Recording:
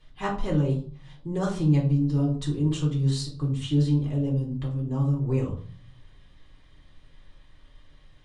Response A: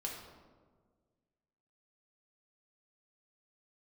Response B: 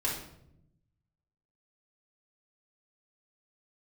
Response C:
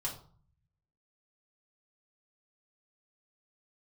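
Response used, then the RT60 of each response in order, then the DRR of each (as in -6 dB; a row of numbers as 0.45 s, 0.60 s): C; 1.6 s, 0.80 s, 0.45 s; -2.0 dB, -5.5 dB, -4.0 dB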